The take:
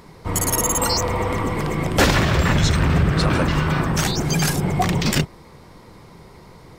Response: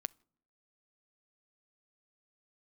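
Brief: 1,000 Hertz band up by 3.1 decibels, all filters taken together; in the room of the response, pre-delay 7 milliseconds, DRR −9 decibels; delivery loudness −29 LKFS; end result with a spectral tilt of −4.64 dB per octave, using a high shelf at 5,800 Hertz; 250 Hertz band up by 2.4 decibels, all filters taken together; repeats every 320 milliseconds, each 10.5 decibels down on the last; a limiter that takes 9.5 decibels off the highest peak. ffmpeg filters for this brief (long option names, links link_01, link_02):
-filter_complex "[0:a]equalizer=frequency=250:width_type=o:gain=3.5,equalizer=frequency=1000:width_type=o:gain=3.5,highshelf=frequency=5800:gain=5.5,alimiter=limit=-12.5dB:level=0:latency=1,aecho=1:1:320|640|960:0.299|0.0896|0.0269,asplit=2[link_01][link_02];[1:a]atrim=start_sample=2205,adelay=7[link_03];[link_02][link_03]afir=irnorm=-1:irlink=0,volume=11dB[link_04];[link_01][link_04]amix=inputs=2:normalize=0,volume=-17.5dB"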